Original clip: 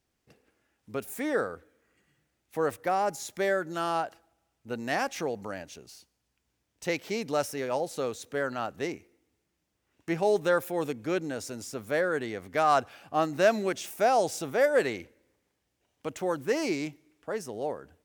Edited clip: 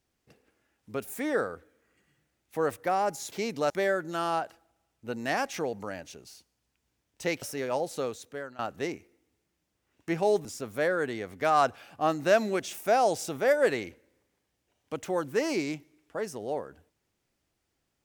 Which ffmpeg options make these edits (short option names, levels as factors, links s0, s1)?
-filter_complex "[0:a]asplit=6[s0][s1][s2][s3][s4][s5];[s0]atrim=end=3.322[s6];[s1]atrim=start=7.038:end=7.422[s7];[s2]atrim=start=3.318:end=7.042[s8];[s3]atrim=start=7.418:end=8.59,asetpts=PTS-STARTPTS,afade=t=out:st=0.572:d=0.6:silence=0.125893[s9];[s4]atrim=start=8.59:end=10.452,asetpts=PTS-STARTPTS,afade=t=in:d=0.004:c=hsin:silence=0.125893[s10];[s5]atrim=start=11.578[s11];[s6][s7]acrossfade=d=0.004:c1=hsin:c2=hsin[s12];[s12][s8]acrossfade=d=0.004:c1=hsin:c2=hsin[s13];[s9][s10]concat=n=2:v=0:a=1[s14];[s13][s14]acrossfade=d=0.004:c1=hsin:c2=hsin[s15];[s15][s11]acrossfade=d=0.004:c1=hsin:c2=hsin"